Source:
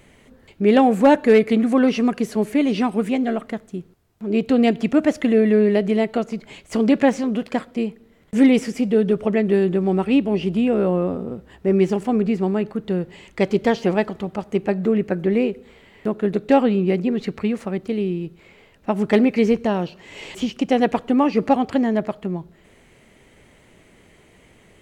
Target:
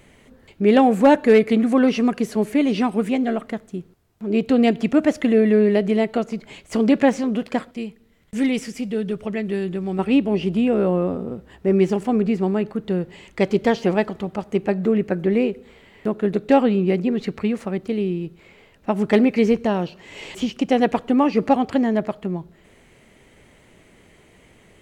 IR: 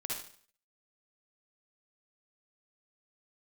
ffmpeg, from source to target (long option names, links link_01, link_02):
-filter_complex "[0:a]asettb=1/sr,asplit=3[link_01][link_02][link_03];[link_01]atrim=end=7.714[link_04];[link_02]atrim=start=7.71:end=9.99,asetpts=PTS-STARTPTS,afade=type=in:duration=0.004:curve=qsin,afade=type=out:start_time=2.276:duration=0.004:curve=qsin,equalizer=frequency=490:width=0.33:gain=-8[link_05];[link_03]atrim=start=9.986[link_06];[link_04][link_05]acrossfade=duration=0.004:curve1=hsin:curve2=qsin[link_07];[link_07][link_06]acrossfade=duration=0.004:curve1=qsin:curve2=hsin"